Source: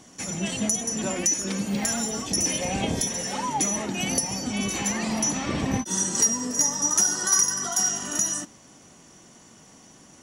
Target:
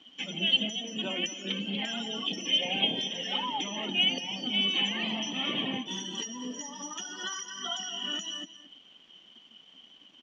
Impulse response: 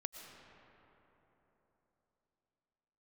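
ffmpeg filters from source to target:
-filter_complex "[0:a]highpass=f=180:w=0.5412,highpass=f=180:w=1.3066,acrusher=bits=7:mix=0:aa=0.5,acompressor=threshold=0.0141:ratio=2,lowpass=f=3100:t=q:w=11,afftdn=nr=13:nf=-38,asplit=2[s0][s1];[s1]aecho=0:1:225:0.188[s2];[s0][s2]amix=inputs=2:normalize=0"

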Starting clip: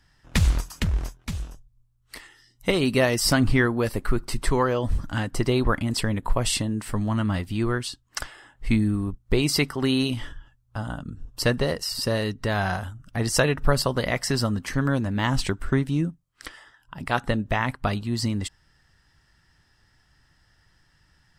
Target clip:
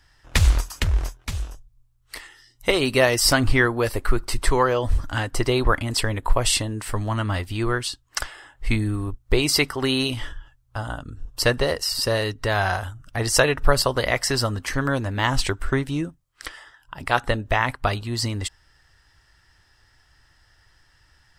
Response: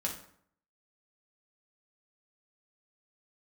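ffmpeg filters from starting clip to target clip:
-af "equalizer=f=190:t=o:w=0.98:g=-12.5,volume=1.68"

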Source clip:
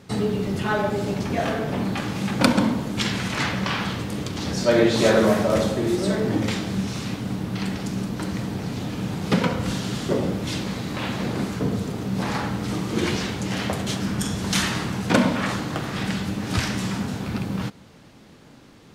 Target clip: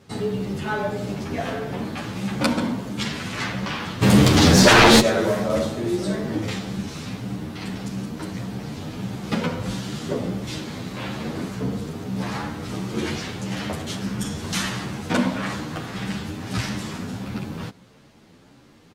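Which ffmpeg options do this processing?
-filter_complex "[0:a]asplit=3[s0][s1][s2];[s0]afade=t=out:st=4.01:d=0.02[s3];[s1]aeval=exprs='0.531*sin(PI/2*5.62*val(0)/0.531)':c=same,afade=t=in:st=4.01:d=0.02,afade=t=out:st=4.99:d=0.02[s4];[s2]afade=t=in:st=4.99:d=0.02[s5];[s3][s4][s5]amix=inputs=3:normalize=0,asplit=2[s6][s7];[s7]adelay=10.4,afreqshift=1.6[s8];[s6][s8]amix=inputs=2:normalize=1"

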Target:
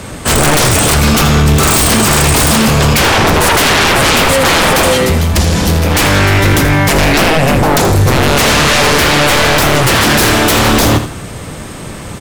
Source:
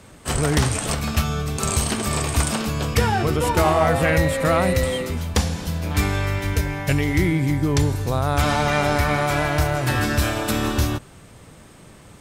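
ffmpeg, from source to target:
-filter_complex "[0:a]asettb=1/sr,asplit=3[s0][s1][s2];[s0]atrim=end=4.964[s3];[s1]atrim=start=4.96:end=5.52,asetpts=PTS-STARTPTS,afade=t=in:d=0.004:c=qsin,afade=t=out:st=0.556:d=0.004:c=qsin,acompressor=threshold=0.0891:ratio=6[s4];[s2]atrim=start=5.516[s5];[s3][s4]acrossfade=d=0.004:c1=hsin:c2=qsin[s6];[s6][s5]acrossfade=d=0.004:c1=qsin:c2=hsin,aeval=exprs='0.376*sin(PI/2*5.01*val(0)/0.376)':c=same,asplit=2[s7][s8];[s8]aecho=0:1:81|162|243:0.282|0.0846|0.0254[s9];[s7][s9]amix=inputs=2:normalize=0,volume=1.26"

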